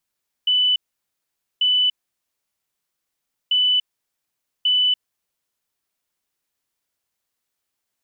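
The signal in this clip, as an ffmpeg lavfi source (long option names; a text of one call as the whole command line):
ffmpeg -f lavfi -i "aevalsrc='0.188*sin(2*PI*2990*t)*clip(min(mod(mod(t,3.04),1.14),0.29-mod(mod(t,3.04),1.14))/0.005,0,1)*lt(mod(t,3.04),2.28)':duration=6.08:sample_rate=44100" out.wav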